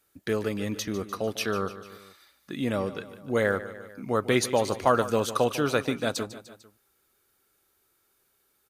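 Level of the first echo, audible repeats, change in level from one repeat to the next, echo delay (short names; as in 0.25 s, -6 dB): -14.5 dB, 3, -4.5 dB, 0.149 s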